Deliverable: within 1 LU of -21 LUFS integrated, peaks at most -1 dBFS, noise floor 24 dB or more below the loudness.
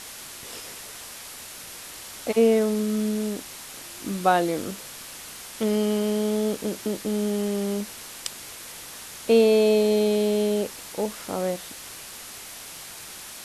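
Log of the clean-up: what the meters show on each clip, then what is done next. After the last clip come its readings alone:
noise floor -41 dBFS; noise floor target -49 dBFS; loudness -24.5 LUFS; peak level -7.5 dBFS; loudness target -21.0 LUFS
-> noise reduction 8 dB, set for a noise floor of -41 dBFS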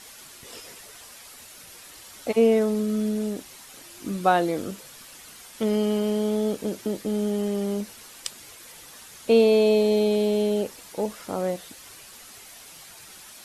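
noise floor -46 dBFS; noise floor target -49 dBFS
-> noise reduction 6 dB, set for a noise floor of -46 dBFS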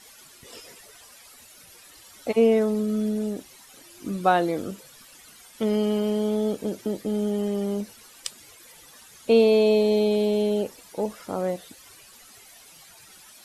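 noise floor -50 dBFS; loudness -24.0 LUFS; peak level -7.5 dBFS; loudness target -21.0 LUFS
-> trim +3 dB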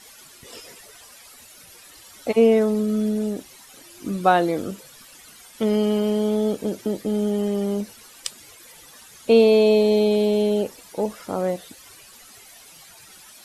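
loudness -21.0 LUFS; peak level -4.5 dBFS; noise floor -47 dBFS

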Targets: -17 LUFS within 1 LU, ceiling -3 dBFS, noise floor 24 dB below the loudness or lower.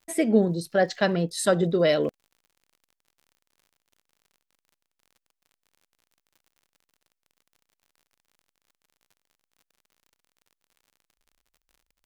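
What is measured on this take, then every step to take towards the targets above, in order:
tick rate 56 per s; loudness -23.5 LUFS; peak level -8.0 dBFS; loudness target -17.0 LUFS
-> de-click; trim +6.5 dB; peak limiter -3 dBFS

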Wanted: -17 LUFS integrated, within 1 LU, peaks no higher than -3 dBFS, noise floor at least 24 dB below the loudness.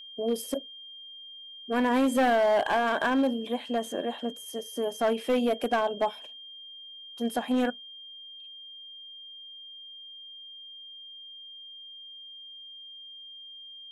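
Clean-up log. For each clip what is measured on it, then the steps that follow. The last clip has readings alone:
clipped samples 1.6%; clipping level -19.5 dBFS; steady tone 3.2 kHz; tone level -43 dBFS; loudness -27.5 LUFS; peak level -19.5 dBFS; loudness target -17.0 LUFS
-> clip repair -19.5 dBFS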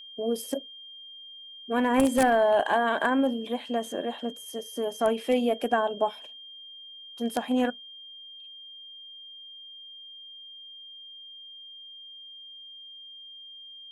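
clipped samples 0.0%; steady tone 3.2 kHz; tone level -43 dBFS
-> band-stop 3.2 kHz, Q 30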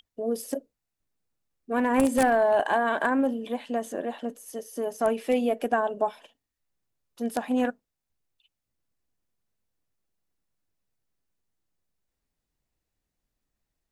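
steady tone not found; loudness -26.5 LUFS; peak level -10.5 dBFS; loudness target -17.0 LUFS
-> trim +9.5 dB; peak limiter -3 dBFS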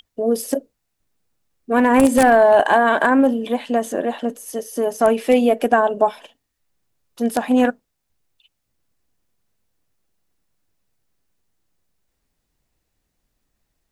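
loudness -17.5 LUFS; peak level -3.0 dBFS; noise floor -75 dBFS

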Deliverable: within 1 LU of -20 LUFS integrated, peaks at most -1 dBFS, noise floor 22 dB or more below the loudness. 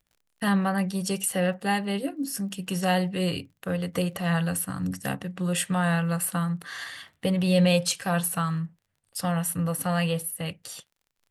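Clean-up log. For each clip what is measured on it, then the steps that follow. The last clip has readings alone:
tick rate 37 per s; loudness -27.0 LUFS; peak level -11.5 dBFS; loudness target -20.0 LUFS
-> de-click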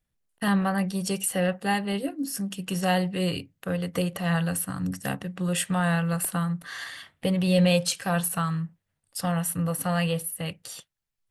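tick rate 0.27 per s; loudness -27.0 LUFS; peak level -11.5 dBFS; loudness target -20.0 LUFS
-> trim +7 dB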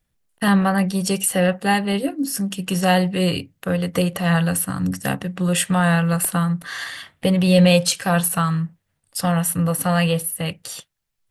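loudness -20.0 LUFS; peak level -4.5 dBFS; noise floor -73 dBFS

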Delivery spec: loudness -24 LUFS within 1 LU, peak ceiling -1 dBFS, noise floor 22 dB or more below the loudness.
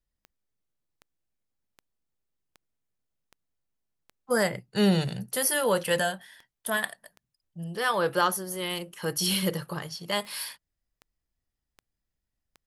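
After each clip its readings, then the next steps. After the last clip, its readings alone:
clicks found 17; loudness -28.0 LUFS; peak level -12.0 dBFS; loudness target -24.0 LUFS
-> de-click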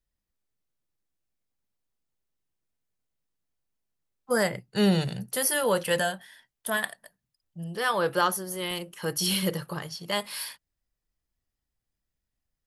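clicks found 0; loudness -28.0 LUFS; peak level -12.0 dBFS; loudness target -24.0 LUFS
-> trim +4 dB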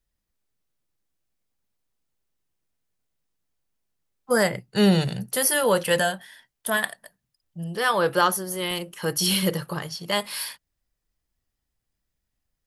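loudness -24.0 LUFS; peak level -8.0 dBFS; noise floor -81 dBFS

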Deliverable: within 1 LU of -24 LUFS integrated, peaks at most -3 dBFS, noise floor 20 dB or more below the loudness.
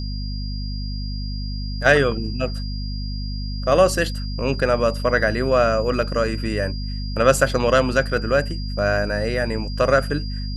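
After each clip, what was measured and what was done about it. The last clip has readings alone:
hum 50 Hz; highest harmonic 250 Hz; hum level -25 dBFS; steady tone 4.8 kHz; tone level -36 dBFS; loudness -21.5 LUFS; peak level -1.5 dBFS; loudness target -24.0 LUFS
-> de-hum 50 Hz, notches 5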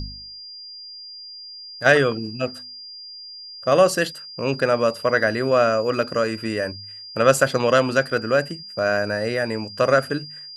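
hum not found; steady tone 4.8 kHz; tone level -36 dBFS
-> band-stop 4.8 kHz, Q 30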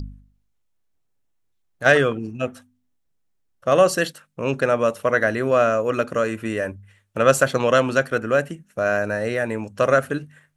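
steady tone not found; loudness -21.0 LUFS; peak level -2.0 dBFS; loudness target -24.0 LUFS
-> trim -3 dB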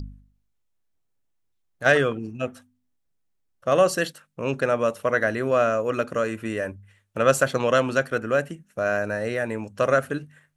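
loudness -24.0 LUFS; peak level -5.0 dBFS; noise floor -72 dBFS

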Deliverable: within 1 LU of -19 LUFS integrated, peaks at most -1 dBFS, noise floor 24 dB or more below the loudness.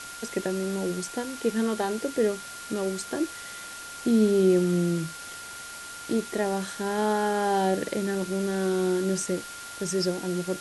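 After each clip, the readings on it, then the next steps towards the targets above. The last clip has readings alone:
steady tone 1.4 kHz; tone level -41 dBFS; noise floor -41 dBFS; noise floor target -51 dBFS; loudness -27.0 LUFS; peak level -11.5 dBFS; loudness target -19.0 LUFS
-> band-stop 1.4 kHz, Q 30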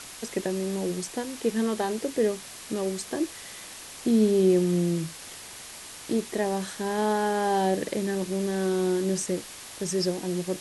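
steady tone not found; noise floor -43 dBFS; noise floor target -51 dBFS
-> noise print and reduce 8 dB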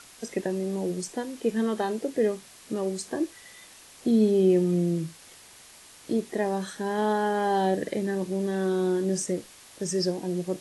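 noise floor -51 dBFS; noise floor target -52 dBFS
-> noise print and reduce 6 dB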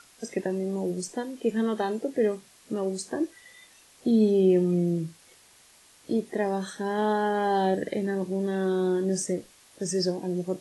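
noise floor -57 dBFS; loudness -27.5 LUFS; peak level -11.5 dBFS; loudness target -19.0 LUFS
-> trim +8.5 dB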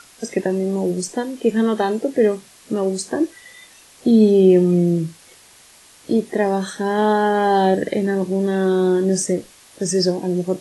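loudness -19.0 LUFS; peak level -3.0 dBFS; noise floor -48 dBFS

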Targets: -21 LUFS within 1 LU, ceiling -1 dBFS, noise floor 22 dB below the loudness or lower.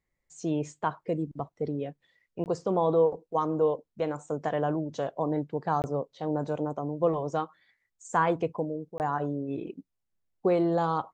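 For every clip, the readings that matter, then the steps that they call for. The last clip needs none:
dropouts 3; longest dropout 19 ms; loudness -30.0 LUFS; peak level -12.0 dBFS; loudness target -21.0 LUFS
-> interpolate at 2.44/5.82/8.98 s, 19 ms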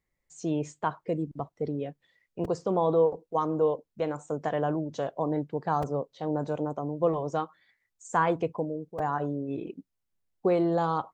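dropouts 0; loudness -30.0 LUFS; peak level -12.0 dBFS; loudness target -21.0 LUFS
-> trim +9 dB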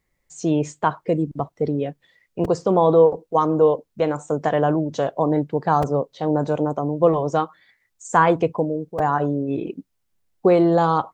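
loudness -21.0 LUFS; peak level -3.0 dBFS; noise floor -73 dBFS

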